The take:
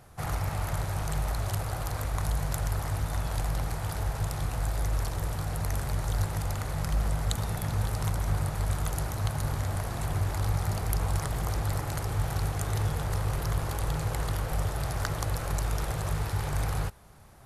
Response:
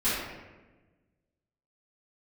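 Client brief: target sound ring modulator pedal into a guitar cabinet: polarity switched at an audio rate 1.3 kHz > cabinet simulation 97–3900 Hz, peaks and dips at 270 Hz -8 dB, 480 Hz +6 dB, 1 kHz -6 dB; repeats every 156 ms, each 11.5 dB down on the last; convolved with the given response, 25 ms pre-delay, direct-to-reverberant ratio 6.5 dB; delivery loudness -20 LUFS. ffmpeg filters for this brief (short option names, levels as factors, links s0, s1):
-filter_complex "[0:a]aecho=1:1:156|312|468:0.266|0.0718|0.0194,asplit=2[s0][s1];[1:a]atrim=start_sample=2205,adelay=25[s2];[s1][s2]afir=irnorm=-1:irlink=0,volume=0.119[s3];[s0][s3]amix=inputs=2:normalize=0,aeval=exprs='val(0)*sgn(sin(2*PI*1300*n/s))':c=same,highpass=97,equalizer=f=270:t=q:w=4:g=-8,equalizer=f=480:t=q:w=4:g=6,equalizer=f=1000:t=q:w=4:g=-6,lowpass=f=3900:w=0.5412,lowpass=f=3900:w=1.3066,volume=2.66"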